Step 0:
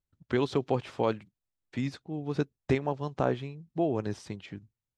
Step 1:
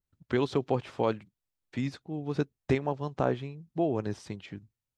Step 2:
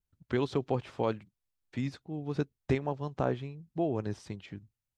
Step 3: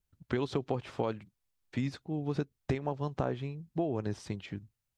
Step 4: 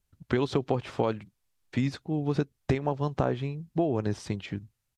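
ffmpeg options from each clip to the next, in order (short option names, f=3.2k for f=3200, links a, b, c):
-af "adynamicequalizer=threshold=0.00562:dfrequency=2000:dqfactor=0.7:tfrequency=2000:tqfactor=0.7:attack=5:release=100:ratio=0.375:range=1.5:mode=cutabove:tftype=highshelf"
-af "lowshelf=f=91:g=6.5,volume=-3dB"
-af "acompressor=threshold=-31dB:ratio=6,volume=3.5dB"
-af "aresample=32000,aresample=44100,volume=5.5dB"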